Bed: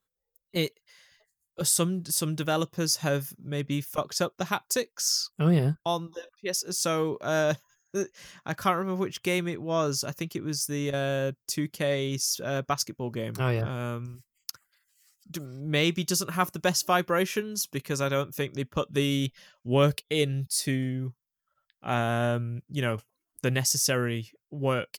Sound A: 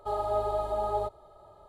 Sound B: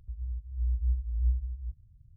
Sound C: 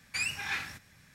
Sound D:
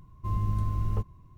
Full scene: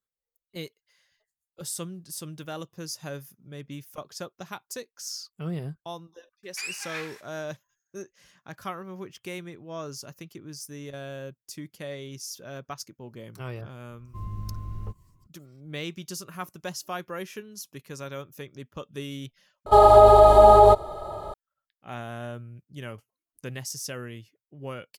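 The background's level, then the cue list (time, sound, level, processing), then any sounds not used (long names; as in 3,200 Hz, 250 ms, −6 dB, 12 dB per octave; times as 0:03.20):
bed −10 dB
0:06.43: mix in C −2.5 dB + high-pass filter 630 Hz
0:13.90: mix in D −7 dB
0:19.66: overwrite with A −3 dB + boost into a limiter +21.5 dB
not used: B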